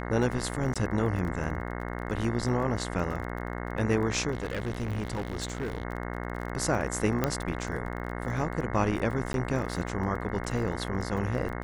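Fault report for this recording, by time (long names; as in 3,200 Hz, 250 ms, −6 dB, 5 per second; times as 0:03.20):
mains buzz 60 Hz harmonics 36 −35 dBFS
surface crackle 31 per second −35 dBFS
0:00.74–0:00.76: drop-out 16 ms
0:04.31–0:05.83: clipping −27.5 dBFS
0:07.24: click −11 dBFS
0:09.33–0:09.34: drop-out 12 ms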